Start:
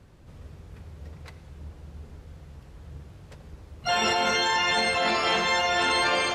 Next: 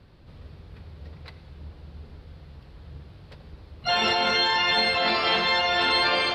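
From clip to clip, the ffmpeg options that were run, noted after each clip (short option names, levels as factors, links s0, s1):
-af "highshelf=f=5400:t=q:w=3:g=-7"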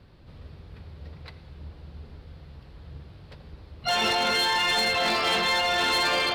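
-af "volume=10,asoftclip=hard,volume=0.1"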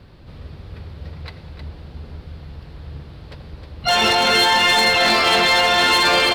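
-af "aecho=1:1:313:0.422,volume=2.51"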